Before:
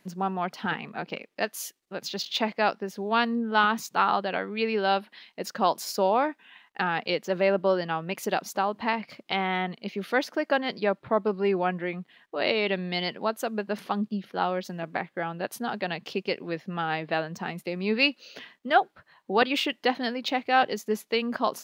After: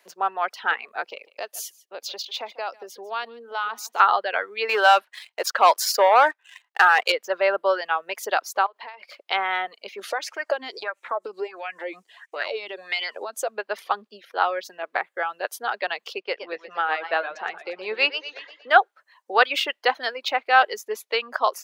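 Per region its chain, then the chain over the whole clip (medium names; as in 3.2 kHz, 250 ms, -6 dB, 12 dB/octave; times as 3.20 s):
1.10–4.00 s: peaking EQ 1.7 kHz -6 dB 0.8 oct + compression 3:1, threshold -31 dBFS + delay 146 ms -13 dB
4.69–7.12 s: bass shelf 300 Hz -8.5 dB + waveshaping leveller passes 2
8.66–9.26 s: high-pass 350 Hz + compression 10:1, threshold -36 dBFS
9.99–13.49 s: peaking EQ 7.5 kHz +12 dB 1.2 oct + compression 12:1, threshold -31 dBFS + sweeping bell 1.5 Hz 250–2500 Hz +13 dB
16.20–18.70 s: median filter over 3 samples + distance through air 120 m + modulated delay 118 ms, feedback 50%, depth 113 cents, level -8 dB
whole clip: reverb removal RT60 0.58 s; high-pass 460 Hz 24 dB/octave; dynamic bell 1.4 kHz, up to +6 dB, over -41 dBFS, Q 1.8; trim +3.5 dB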